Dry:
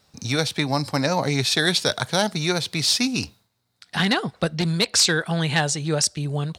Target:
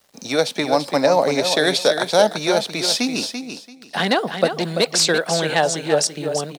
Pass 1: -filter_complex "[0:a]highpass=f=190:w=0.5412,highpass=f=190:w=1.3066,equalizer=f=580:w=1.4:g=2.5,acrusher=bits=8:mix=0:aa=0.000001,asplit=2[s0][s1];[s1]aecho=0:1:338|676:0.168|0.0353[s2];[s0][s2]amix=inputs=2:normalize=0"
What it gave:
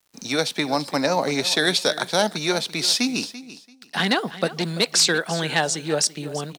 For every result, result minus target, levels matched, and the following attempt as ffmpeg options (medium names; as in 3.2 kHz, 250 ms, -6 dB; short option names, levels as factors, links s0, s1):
echo-to-direct -7.5 dB; 500 Hz band -4.0 dB
-filter_complex "[0:a]highpass=f=190:w=0.5412,highpass=f=190:w=1.3066,equalizer=f=580:w=1.4:g=2.5,acrusher=bits=8:mix=0:aa=0.000001,asplit=2[s0][s1];[s1]aecho=0:1:338|676|1014:0.398|0.0836|0.0176[s2];[s0][s2]amix=inputs=2:normalize=0"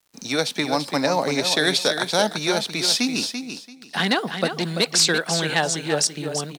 500 Hz band -4.0 dB
-filter_complex "[0:a]highpass=f=190:w=0.5412,highpass=f=190:w=1.3066,equalizer=f=580:w=1.4:g=10.5,acrusher=bits=8:mix=0:aa=0.000001,asplit=2[s0][s1];[s1]aecho=0:1:338|676|1014:0.398|0.0836|0.0176[s2];[s0][s2]amix=inputs=2:normalize=0"